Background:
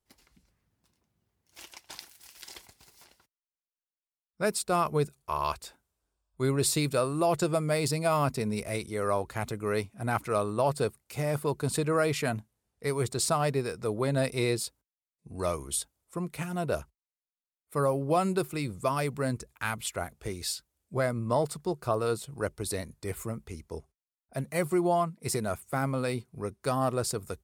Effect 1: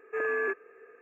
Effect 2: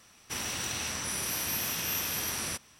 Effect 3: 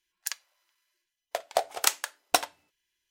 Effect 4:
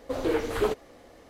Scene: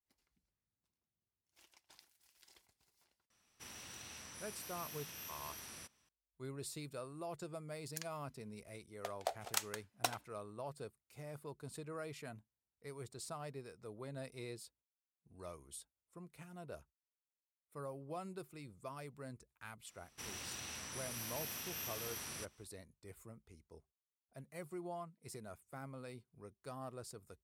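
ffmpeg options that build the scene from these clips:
-filter_complex "[2:a]asplit=2[s0][s1];[0:a]volume=0.106[s2];[s0]atrim=end=2.79,asetpts=PTS-STARTPTS,volume=0.133,afade=t=in:d=0.004:c=hsin,afade=t=out:st=2.786:d=0.004:c=hsin,adelay=3300[s3];[3:a]atrim=end=3.1,asetpts=PTS-STARTPTS,volume=0.224,afade=t=in:d=0.004:c=hsin,afade=t=out:st=3.096:d=0.004:c=hsin,adelay=339570S[s4];[s1]atrim=end=2.79,asetpts=PTS-STARTPTS,volume=0.237,afade=t=in:d=0.004:c=hsin,afade=t=out:st=2.786:d=0.004:c=hsin,adelay=876708S[s5];[s2][s3][s4][s5]amix=inputs=4:normalize=0"

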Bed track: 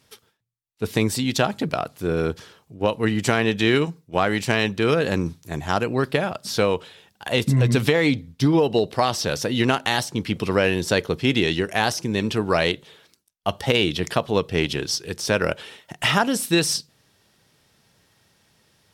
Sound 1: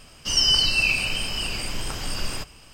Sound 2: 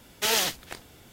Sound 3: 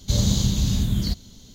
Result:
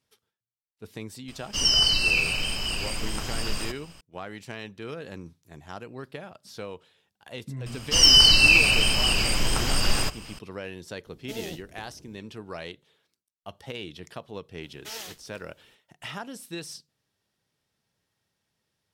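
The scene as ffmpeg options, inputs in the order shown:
-filter_complex "[1:a]asplit=2[s0][s1];[2:a]asplit=2[s2][s3];[0:a]volume=0.133[s4];[s1]acontrast=79[s5];[s2]firequalizer=gain_entry='entry(330,0);entry(1100,-25);entry(3700,-18)':delay=0.05:min_phase=1[s6];[s0]atrim=end=2.73,asetpts=PTS-STARTPTS,volume=0.841,afade=t=in:d=0.004:c=hsin,afade=t=out:st=2.726:d=0.004:c=hsin,adelay=1280[s7];[s5]atrim=end=2.73,asetpts=PTS-STARTPTS,volume=0.841,afade=t=in:d=0.004:c=hsin,afade=t=out:st=2.726:d=0.004:c=hsin,adelay=7660[s8];[s6]atrim=end=1.12,asetpts=PTS-STARTPTS,volume=0.944,afade=t=in:d=0.004:c=hsin,afade=t=out:st=1.116:d=0.004:c=hsin,adelay=487746S[s9];[s3]atrim=end=1.12,asetpts=PTS-STARTPTS,volume=0.178,afade=t=in:d=0.004:c=hsin,afade=t=out:st=1.116:d=0.004:c=hsin,adelay=14630[s10];[s4][s7][s8][s9][s10]amix=inputs=5:normalize=0"

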